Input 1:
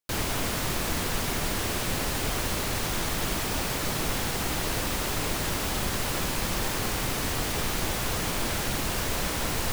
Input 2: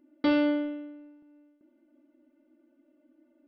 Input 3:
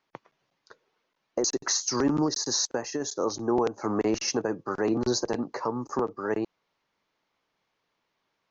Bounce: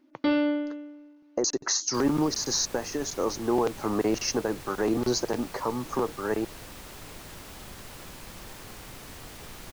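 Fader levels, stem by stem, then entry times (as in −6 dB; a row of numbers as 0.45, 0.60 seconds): −15.0, 0.0, 0.0 decibels; 1.85, 0.00, 0.00 seconds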